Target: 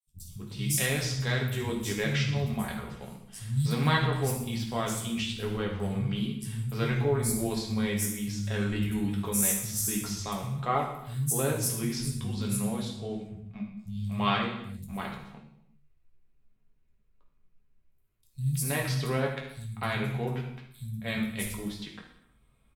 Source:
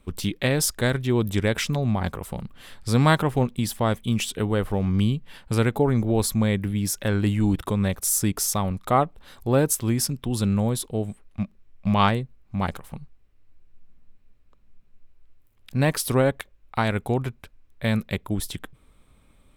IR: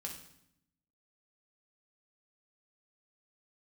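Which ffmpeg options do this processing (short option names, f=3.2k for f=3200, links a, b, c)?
-filter_complex "[0:a]acrossover=split=160|5600[a][b][c];[a]adelay=70[d];[b]adelay=270[e];[d][e][c]amix=inputs=3:normalize=0,atempo=0.86[f];[1:a]atrim=start_sample=2205,afade=t=out:st=0.38:d=0.01,atrim=end_sample=17199,asetrate=36162,aresample=44100[g];[f][g]afir=irnorm=-1:irlink=0,adynamicequalizer=threshold=0.00891:dfrequency=1500:dqfactor=0.7:tfrequency=1500:tqfactor=0.7:attack=5:release=100:ratio=0.375:range=3.5:mode=boostabove:tftype=highshelf,volume=-7.5dB"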